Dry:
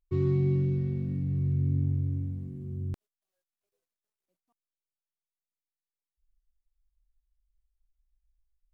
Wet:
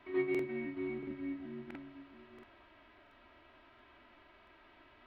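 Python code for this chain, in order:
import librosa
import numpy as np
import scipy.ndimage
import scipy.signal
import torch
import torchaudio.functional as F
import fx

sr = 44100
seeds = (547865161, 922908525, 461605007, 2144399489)

p1 = x + fx.echo_single(x, sr, ms=1174, db=-11.5, dry=0)
p2 = fx.step_gate(p1, sr, bpm=125, pattern='x.x.xx.xxx.xx', floor_db=-12.0, edge_ms=4.5)
p3 = fx.rider(p2, sr, range_db=4, speed_s=0.5)
p4 = p2 + F.gain(torch.from_numpy(p3), -2.0).numpy()
p5 = scipy.signal.sosfilt(scipy.signal.butter(2, 1200.0, 'highpass', fs=sr, output='sos'), p4)
p6 = fx.room_shoebox(p5, sr, seeds[0], volume_m3=270.0, walls='furnished', distance_m=1.9)
p7 = fx.dmg_noise_colour(p6, sr, seeds[1], colour='white', level_db=-60.0)
p8 = scipy.signal.sosfilt(scipy.signal.bessel(6, 1800.0, 'lowpass', norm='mag', fs=sr, output='sos'), p7)
p9 = fx.stretch_vocoder(p8, sr, factor=0.58)
p10 = p9 + 0.95 * np.pad(p9, (int(3.1 * sr / 1000.0), 0))[:len(p9)]
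p11 = fx.buffer_crackle(p10, sr, first_s=0.3, period_s=0.68, block=2048, kind='repeat')
y = F.gain(torch.from_numpy(p11), 8.0).numpy()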